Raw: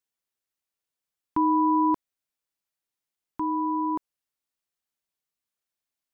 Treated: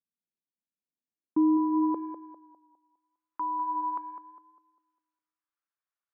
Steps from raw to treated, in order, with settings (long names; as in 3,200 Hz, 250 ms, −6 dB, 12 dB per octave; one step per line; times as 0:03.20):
tape delay 202 ms, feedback 44%, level −7 dB, low-pass 1,100 Hz
band-pass filter sweep 210 Hz → 1,300 Hz, 0:00.80–0:03.49
level +3 dB